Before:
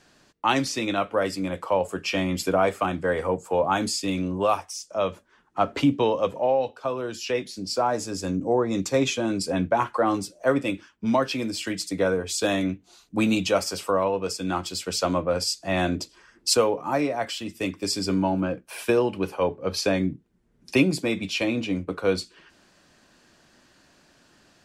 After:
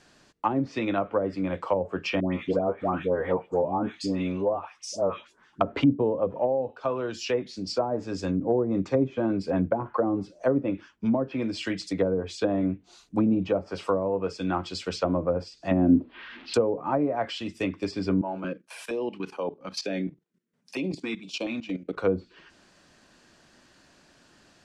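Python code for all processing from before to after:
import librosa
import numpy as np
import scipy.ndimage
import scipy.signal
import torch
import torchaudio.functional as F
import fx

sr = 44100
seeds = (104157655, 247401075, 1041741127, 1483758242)

y = fx.chain(x, sr, fx.low_shelf(hz=91.0, db=-7.5),
    fx.dispersion(late='highs', ms=139.0, hz=1100.0), at=(2.2, 5.61))
y = fx.chain(y, sr, fx.crossing_spikes(level_db=-24.0),
    fx.steep_lowpass(hz=3300.0, slope=36),
    fx.peak_eq(hz=250.0, db=13.5, octaves=0.44), at=(15.71, 16.54))
y = fx.chain(y, sr, fx.highpass(hz=170.0, slope=24),
    fx.level_steps(step_db=14),
    fx.filter_held_notch(hz=4.3, low_hz=240.0, high_hz=1900.0), at=(18.21, 21.97))
y = scipy.signal.sosfilt(scipy.signal.butter(2, 11000.0, 'lowpass', fs=sr, output='sos'), y)
y = fx.env_lowpass_down(y, sr, base_hz=500.0, full_db=-18.5)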